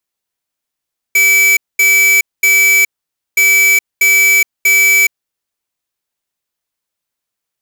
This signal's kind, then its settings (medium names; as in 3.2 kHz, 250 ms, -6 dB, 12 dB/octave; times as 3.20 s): beep pattern square 2.3 kHz, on 0.42 s, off 0.22 s, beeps 3, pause 0.52 s, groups 2, -9 dBFS